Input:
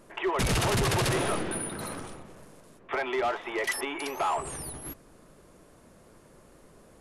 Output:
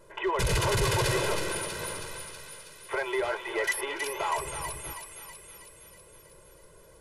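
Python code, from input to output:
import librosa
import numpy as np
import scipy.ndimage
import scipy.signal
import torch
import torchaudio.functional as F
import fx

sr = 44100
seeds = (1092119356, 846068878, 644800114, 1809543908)

p1 = x + 0.96 * np.pad(x, (int(2.0 * sr / 1000.0), 0))[:len(x)]
p2 = p1 + fx.echo_thinned(p1, sr, ms=322, feedback_pct=67, hz=1100.0, wet_db=-5.5, dry=0)
y = p2 * 10.0 ** (-3.5 / 20.0)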